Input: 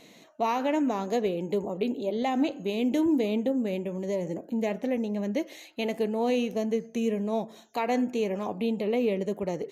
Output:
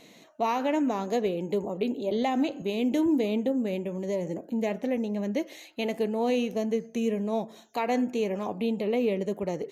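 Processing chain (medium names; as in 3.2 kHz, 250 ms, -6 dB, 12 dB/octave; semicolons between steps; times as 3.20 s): 2.11–2.62 s: three bands compressed up and down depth 70%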